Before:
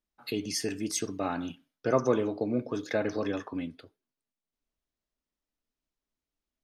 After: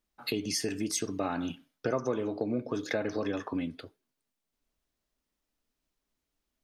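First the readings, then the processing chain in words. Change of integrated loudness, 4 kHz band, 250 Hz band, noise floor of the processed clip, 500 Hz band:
−1.5 dB, +1.0 dB, −1.0 dB, −85 dBFS, −3.0 dB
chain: downward compressor 3 to 1, threshold −36 dBFS, peak gain reduction 13 dB
level +6 dB

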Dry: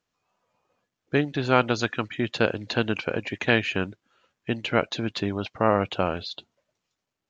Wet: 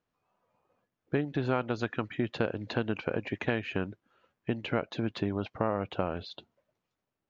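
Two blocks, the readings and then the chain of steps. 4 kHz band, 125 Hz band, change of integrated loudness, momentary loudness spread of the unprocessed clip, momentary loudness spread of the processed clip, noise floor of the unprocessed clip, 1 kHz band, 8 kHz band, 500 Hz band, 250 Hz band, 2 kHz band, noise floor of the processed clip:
−11.5 dB, −4.5 dB, −7.0 dB, 9 LU, 6 LU, −84 dBFS, −9.0 dB, can't be measured, −6.5 dB, −5.0 dB, −10.0 dB, below −85 dBFS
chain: downward compressor 3 to 1, threshold −26 dBFS, peak gain reduction 10 dB
low-pass filter 1,400 Hz 6 dB per octave

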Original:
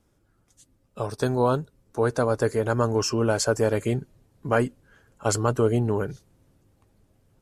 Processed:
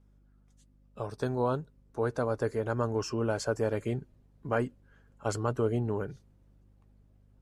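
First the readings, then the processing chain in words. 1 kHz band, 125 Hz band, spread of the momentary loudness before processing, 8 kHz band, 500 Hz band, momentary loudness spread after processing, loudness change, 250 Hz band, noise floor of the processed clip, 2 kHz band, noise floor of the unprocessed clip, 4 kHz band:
−7.5 dB, −7.0 dB, 9 LU, −13.5 dB, −7.0 dB, 8 LU, −7.5 dB, −7.0 dB, −63 dBFS, −8.0 dB, −67 dBFS, −11.5 dB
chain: high-shelf EQ 5,300 Hz −10 dB
mains hum 50 Hz, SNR 29 dB
level −7 dB

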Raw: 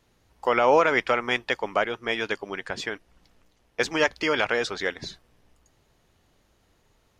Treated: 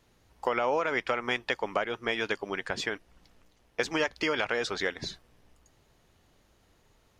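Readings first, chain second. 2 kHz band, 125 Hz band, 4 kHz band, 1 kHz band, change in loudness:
−5.0 dB, −3.5 dB, −3.5 dB, −6.5 dB, −6.0 dB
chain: downward compressor 4 to 1, threshold −25 dBFS, peak gain reduction 10 dB

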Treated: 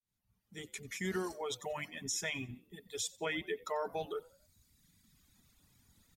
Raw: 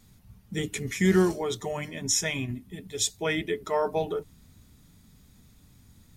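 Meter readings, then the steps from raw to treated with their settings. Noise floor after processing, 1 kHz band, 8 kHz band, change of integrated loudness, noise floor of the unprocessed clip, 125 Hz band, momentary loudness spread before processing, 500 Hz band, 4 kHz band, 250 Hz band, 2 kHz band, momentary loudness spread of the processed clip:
−83 dBFS, −8.5 dB, −11.0 dB, −11.0 dB, −58 dBFS, −16.5 dB, 12 LU, −11.5 dB, −9.5 dB, −15.5 dB, −8.0 dB, 11 LU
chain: fade in at the beginning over 1.69 s
reverb reduction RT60 1.5 s
low-shelf EQ 460 Hz −8.5 dB
brickwall limiter −24 dBFS, peak gain reduction 11 dB
on a send: echo with shifted repeats 91 ms, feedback 42%, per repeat +57 Hz, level −22 dB
on the sum: level −3 dB

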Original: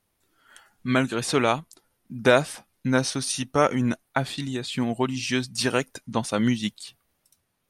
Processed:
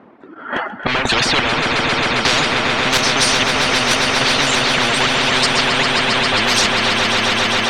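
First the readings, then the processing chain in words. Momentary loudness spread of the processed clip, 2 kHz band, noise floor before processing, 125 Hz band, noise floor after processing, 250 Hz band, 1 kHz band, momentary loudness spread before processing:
3 LU, +15.5 dB, −74 dBFS, +3.5 dB, −35 dBFS, +3.0 dB, +12.0 dB, 10 LU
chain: high-pass filter 120 Hz 12 dB per octave
mid-hump overdrive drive 36 dB, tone 1,400 Hz, clips at −3 dBFS
noise gate −44 dBFS, range −8 dB
reverb reduction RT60 1.2 s
parametric band 250 Hz +11 dB 1.2 octaves
square-wave tremolo 1.9 Hz, depth 65%, duty 65%
low-pass that shuts in the quiet parts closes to 1,400 Hz, open at −0.5 dBFS
on a send: echo that builds up and dies away 134 ms, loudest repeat 5, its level −11.5 dB
on the sum: every bin compressed towards the loudest bin 10 to 1
level −7.5 dB

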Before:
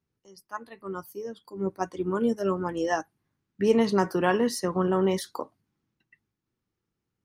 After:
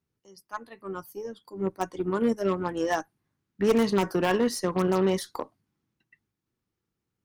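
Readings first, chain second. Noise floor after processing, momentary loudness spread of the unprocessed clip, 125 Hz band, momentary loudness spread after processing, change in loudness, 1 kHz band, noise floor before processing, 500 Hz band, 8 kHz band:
−85 dBFS, 15 LU, 0.0 dB, 16 LU, 0.0 dB, −0.5 dB, −84 dBFS, 0.0 dB, +0.5 dB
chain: wave folding −14 dBFS
harmonic generator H 6 −22 dB, 7 −43 dB, 8 −22 dB, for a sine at −14 dBFS

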